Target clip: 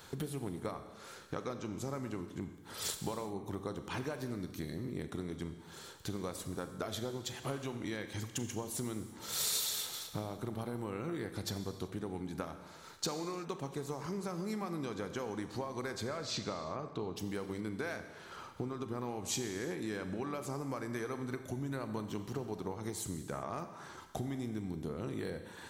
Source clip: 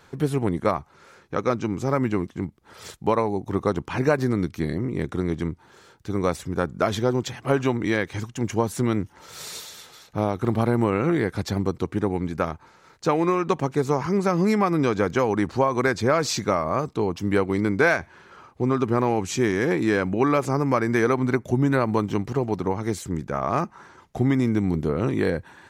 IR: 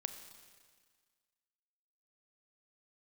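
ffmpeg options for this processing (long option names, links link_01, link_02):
-filter_complex "[0:a]asettb=1/sr,asplit=3[link_01][link_02][link_03];[link_01]atrim=end=16.094[link_04];[link_02]atrim=start=16.09:end=17.16,asetpts=PTS-STARTPTS,afade=type=in:duration=0.004:curve=qsin,afade=type=out:start_time=1.066:duration=0.004:curve=qsin,lowpass=4100[link_05];[link_03]atrim=start=17.156[link_06];[link_04][link_05]acrossfade=duration=0.004:curve1=hsin:curve2=qsin[link_07];[link_07][link_06]acrossfade=duration=0.004:curve1=qsin:curve2=hsin,acompressor=threshold=-35dB:ratio=8,aexciter=amount=2:drive=6:freq=3200[link_08];[1:a]atrim=start_sample=2205,afade=type=out:start_time=0.44:duration=0.01,atrim=end_sample=19845[link_09];[link_08][link_09]afir=irnorm=-1:irlink=0"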